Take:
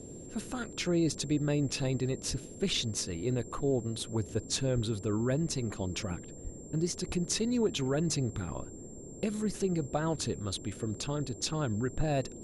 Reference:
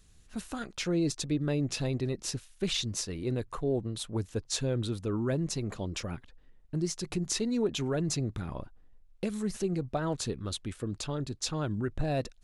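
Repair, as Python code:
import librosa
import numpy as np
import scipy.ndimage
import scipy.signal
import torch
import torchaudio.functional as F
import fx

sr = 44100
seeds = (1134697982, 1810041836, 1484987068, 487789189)

y = fx.notch(x, sr, hz=7400.0, q=30.0)
y = fx.fix_deplosive(y, sr, at_s=(2.29, 4.74, 6.43, 7.07))
y = fx.noise_reduce(y, sr, print_start_s=8.72, print_end_s=9.22, reduce_db=10.0)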